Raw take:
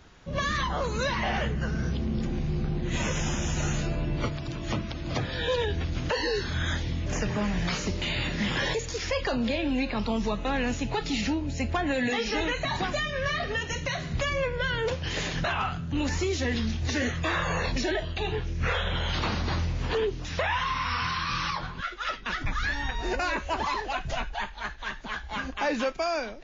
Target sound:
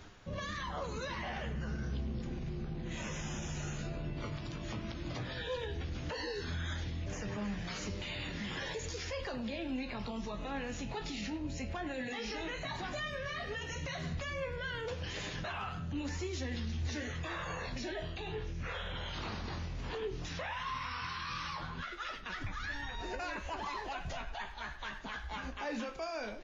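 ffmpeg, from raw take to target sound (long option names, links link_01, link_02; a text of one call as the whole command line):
ffmpeg -i in.wav -filter_complex "[0:a]alimiter=level_in=3.5dB:limit=-24dB:level=0:latency=1:release=74,volume=-3.5dB,areverse,acompressor=mode=upward:threshold=-38dB:ratio=2.5,areverse,flanger=delay=9.8:depth=9.8:regen=50:speed=0.13:shape=sinusoidal,asplit=2[link_01][link_02];[link_02]adelay=100,highpass=300,lowpass=3400,asoftclip=type=hard:threshold=-36.5dB,volume=-12dB[link_03];[link_01][link_03]amix=inputs=2:normalize=0" out.wav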